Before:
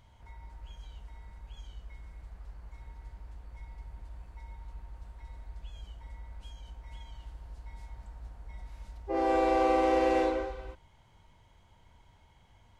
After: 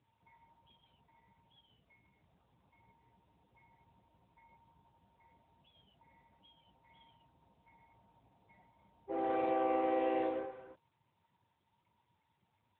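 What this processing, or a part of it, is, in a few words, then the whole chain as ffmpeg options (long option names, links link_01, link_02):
mobile call with aggressive noise cancelling: -af "highpass=130,afftdn=noise_reduction=35:noise_floor=-57,volume=-6.5dB" -ar 8000 -c:a libopencore_amrnb -b:a 10200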